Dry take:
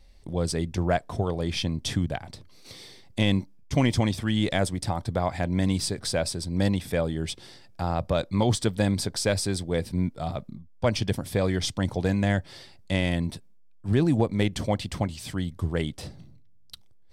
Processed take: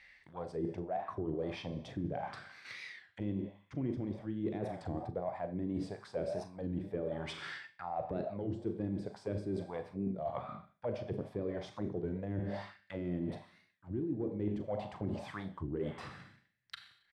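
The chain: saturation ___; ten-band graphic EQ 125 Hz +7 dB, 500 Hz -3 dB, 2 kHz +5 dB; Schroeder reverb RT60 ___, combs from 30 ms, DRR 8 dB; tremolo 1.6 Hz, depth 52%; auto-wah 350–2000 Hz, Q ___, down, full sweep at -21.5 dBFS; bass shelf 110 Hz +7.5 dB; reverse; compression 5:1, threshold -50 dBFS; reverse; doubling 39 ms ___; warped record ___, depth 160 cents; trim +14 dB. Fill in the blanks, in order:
-14 dBFS, 0.75 s, 3.9, -13 dB, 33 1/3 rpm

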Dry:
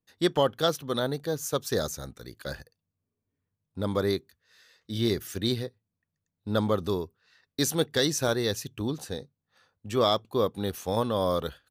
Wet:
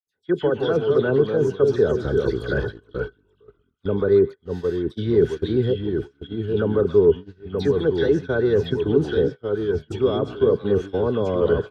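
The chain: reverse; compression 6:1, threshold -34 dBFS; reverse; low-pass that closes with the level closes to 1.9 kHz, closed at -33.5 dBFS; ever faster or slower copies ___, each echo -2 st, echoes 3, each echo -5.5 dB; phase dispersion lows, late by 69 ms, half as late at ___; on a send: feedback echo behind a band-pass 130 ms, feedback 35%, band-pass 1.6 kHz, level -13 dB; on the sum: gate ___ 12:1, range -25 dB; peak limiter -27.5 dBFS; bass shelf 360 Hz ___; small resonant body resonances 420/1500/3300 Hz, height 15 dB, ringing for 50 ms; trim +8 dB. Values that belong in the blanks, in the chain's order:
124 ms, 2.1 kHz, -43 dBFS, +8 dB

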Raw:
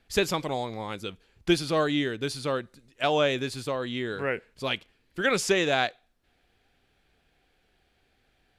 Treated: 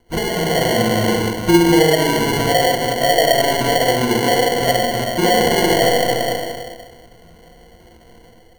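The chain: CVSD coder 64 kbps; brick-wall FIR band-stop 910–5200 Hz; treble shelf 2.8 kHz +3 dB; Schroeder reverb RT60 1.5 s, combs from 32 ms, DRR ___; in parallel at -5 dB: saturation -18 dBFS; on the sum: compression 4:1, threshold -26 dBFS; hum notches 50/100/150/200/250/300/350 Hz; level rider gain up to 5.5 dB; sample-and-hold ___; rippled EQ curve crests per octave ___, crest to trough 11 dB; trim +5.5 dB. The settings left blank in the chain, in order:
-8 dB, 35×, 1.9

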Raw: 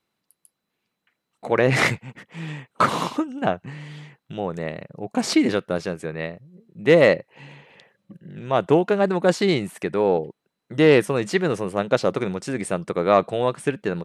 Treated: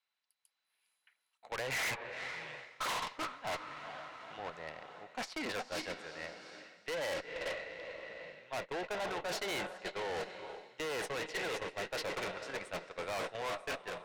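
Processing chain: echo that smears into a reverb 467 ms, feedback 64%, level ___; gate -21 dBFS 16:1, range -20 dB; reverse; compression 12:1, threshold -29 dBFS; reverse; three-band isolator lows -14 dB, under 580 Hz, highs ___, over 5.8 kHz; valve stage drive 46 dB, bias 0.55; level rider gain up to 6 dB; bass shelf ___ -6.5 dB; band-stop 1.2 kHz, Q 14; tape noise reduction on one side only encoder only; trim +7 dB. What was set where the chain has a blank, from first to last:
-10 dB, -16 dB, 400 Hz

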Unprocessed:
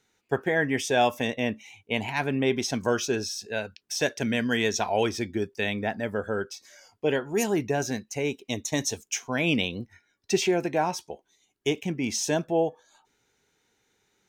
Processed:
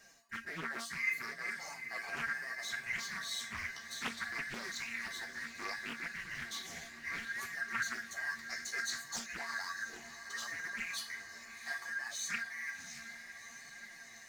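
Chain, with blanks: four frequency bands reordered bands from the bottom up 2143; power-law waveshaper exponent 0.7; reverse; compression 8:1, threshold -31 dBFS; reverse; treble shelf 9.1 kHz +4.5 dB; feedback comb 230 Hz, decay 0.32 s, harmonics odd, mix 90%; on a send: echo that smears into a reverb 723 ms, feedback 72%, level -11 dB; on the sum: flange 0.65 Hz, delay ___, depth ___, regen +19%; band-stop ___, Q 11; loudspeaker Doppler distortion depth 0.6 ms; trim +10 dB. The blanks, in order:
4.8 ms, 9 ms, 3.3 kHz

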